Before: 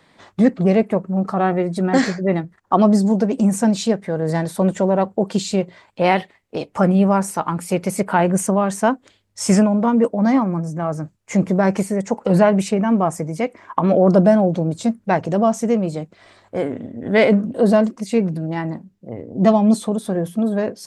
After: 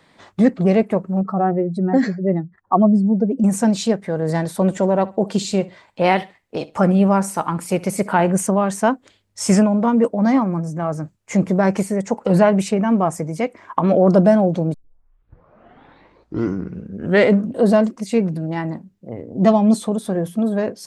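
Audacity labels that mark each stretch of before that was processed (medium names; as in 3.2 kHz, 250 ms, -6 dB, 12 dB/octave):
1.210000	3.440000	spectral contrast enhancement exponent 1.6
4.640000	8.330000	feedback delay 66 ms, feedback 23%, level -20 dB
14.740000	14.740000	tape start 2.64 s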